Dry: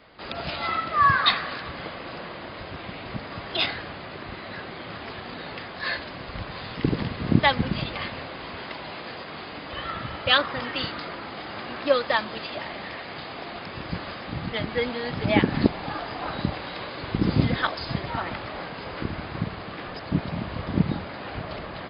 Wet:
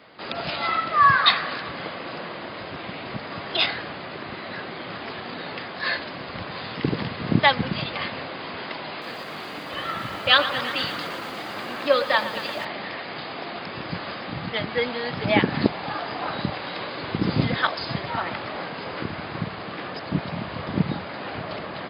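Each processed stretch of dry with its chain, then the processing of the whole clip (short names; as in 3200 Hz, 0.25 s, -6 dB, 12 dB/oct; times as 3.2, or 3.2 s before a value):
8.9–12.65 de-hum 46.26 Hz, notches 21 + lo-fi delay 0.116 s, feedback 80%, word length 7-bit, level -13 dB
whole clip: HPF 130 Hz 12 dB/oct; dynamic EQ 270 Hz, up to -4 dB, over -37 dBFS, Q 1; gain +3 dB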